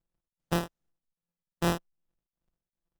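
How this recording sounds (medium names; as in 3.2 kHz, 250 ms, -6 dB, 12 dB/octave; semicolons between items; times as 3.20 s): a buzz of ramps at a fixed pitch in blocks of 256 samples; tremolo triangle 2.5 Hz, depth 95%; aliases and images of a low sample rate 2.2 kHz, jitter 0%; Opus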